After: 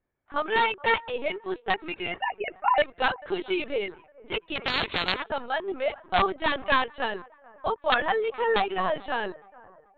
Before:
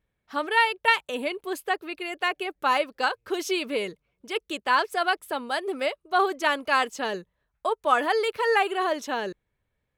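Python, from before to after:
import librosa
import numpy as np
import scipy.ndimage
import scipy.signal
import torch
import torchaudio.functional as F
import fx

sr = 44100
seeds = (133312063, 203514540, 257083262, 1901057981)

y = fx.sine_speech(x, sr, at=(2.17, 2.82))
y = fx.rider(y, sr, range_db=4, speed_s=2.0)
y = fx.low_shelf(y, sr, hz=200.0, db=-9.0)
y = (np.mod(10.0 ** (12.5 / 20.0) * y + 1.0, 2.0) - 1.0) / 10.0 ** (12.5 / 20.0)
y = fx.echo_wet_bandpass(y, sr, ms=432, feedback_pct=44, hz=860.0, wet_db=-21)
y = fx.transient(y, sr, attack_db=4, sustain_db=-2, at=(6.69, 7.18), fade=0.02)
y = fx.lpc_vocoder(y, sr, seeds[0], excitation='pitch_kept', order=16)
y = fx.env_lowpass(y, sr, base_hz=1500.0, full_db=-23.5)
y = fx.spectral_comp(y, sr, ratio=10.0, at=(4.55, 5.22), fade=0.02)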